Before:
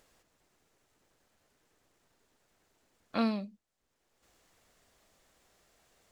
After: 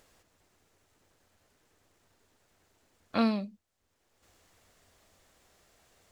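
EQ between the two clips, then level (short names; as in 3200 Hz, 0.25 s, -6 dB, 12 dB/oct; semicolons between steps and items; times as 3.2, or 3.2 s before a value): bell 88 Hz +9.5 dB 0.29 oct; +3.0 dB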